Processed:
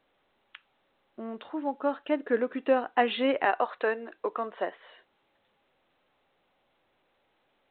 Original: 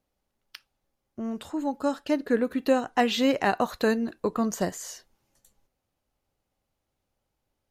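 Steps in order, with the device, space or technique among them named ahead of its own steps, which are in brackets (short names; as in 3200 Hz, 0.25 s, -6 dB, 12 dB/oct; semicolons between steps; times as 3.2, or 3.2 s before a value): 3.45–4.79 HPF 400 Hz 12 dB/oct; telephone (BPF 340–3100 Hz; A-law 64 kbps 8000 Hz)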